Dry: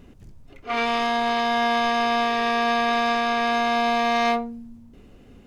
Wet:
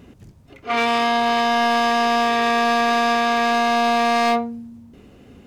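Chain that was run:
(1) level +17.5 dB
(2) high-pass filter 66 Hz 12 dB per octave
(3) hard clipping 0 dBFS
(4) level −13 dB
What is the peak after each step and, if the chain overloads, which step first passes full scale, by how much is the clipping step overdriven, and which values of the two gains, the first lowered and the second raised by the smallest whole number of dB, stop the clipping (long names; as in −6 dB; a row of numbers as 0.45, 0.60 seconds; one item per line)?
+6.0, +6.0, 0.0, −13.0 dBFS
step 1, 6.0 dB
step 1 +11.5 dB, step 4 −7 dB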